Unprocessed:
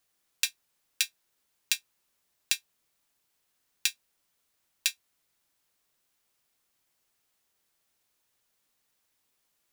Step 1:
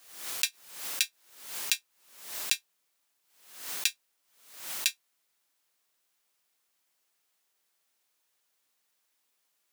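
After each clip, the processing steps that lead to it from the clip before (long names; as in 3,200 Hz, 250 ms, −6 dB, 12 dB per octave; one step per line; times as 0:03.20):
high-pass filter 410 Hz 6 dB per octave
background raised ahead of every attack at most 83 dB per second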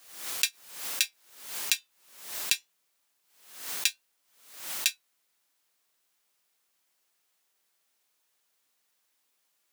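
flanger 0.21 Hz, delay 3.5 ms, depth 2.1 ms, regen −86%
level +6 dB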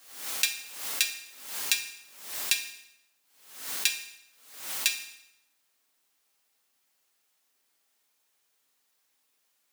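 convolution reverb RT60 0.85 s, pre-delay 4 ms, DRR 4.5 dB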